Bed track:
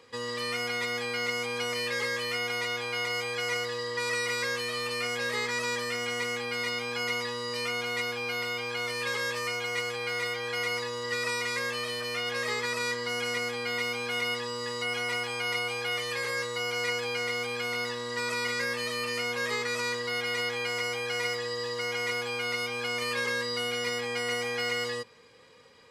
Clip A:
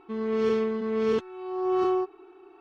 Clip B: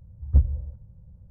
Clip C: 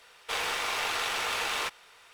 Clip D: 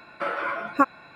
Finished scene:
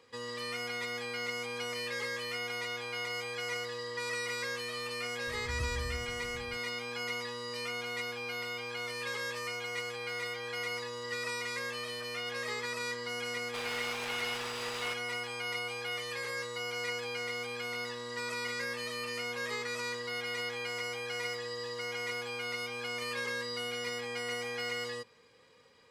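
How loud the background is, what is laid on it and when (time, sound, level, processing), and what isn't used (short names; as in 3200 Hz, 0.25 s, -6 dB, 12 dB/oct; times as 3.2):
bed track -6 dB
5.27 add B -2 dB + compressor, threshold -32 dBFS
13.25 add C -7 dB + limiter -24 dBFS
not used: A, D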